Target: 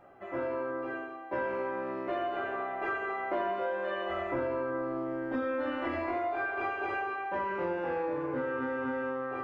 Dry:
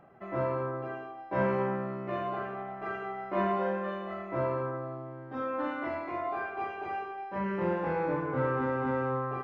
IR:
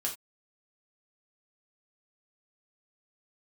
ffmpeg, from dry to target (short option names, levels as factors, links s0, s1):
-filter_complex "[0:a]equalizer=f=170:t=o:w=0.73:g=-8[s0];[1:a]atrim=start_sample=2205[s1];[s0][s1]afir=irnorm=-1:irlink=0,dynaudnorm=f=260:g=17:m=2.51,asettb=1/sr,asplit=3[s2][s3][s4];[s2]atrim=end=4.094[s5];[s3]atrim=start=4.09:end=6.17,asetpts=PTS-STARTPTS,afade=t=in:d=0.004:c=qsin,afade=t=out:st=2.076:d=0.004:c=qsin,lowshelf=f=120:g=10[s6];[s4]atrim=start=6.166[s7];[s5][s6]acrossfade=d=0.004:c1=hsin:c2=qsin[s8];[s8][s7]acrossfade=d=0.004:c1=qsin:c2=hsin,acompressor=threshold=0.0316:ratio=6"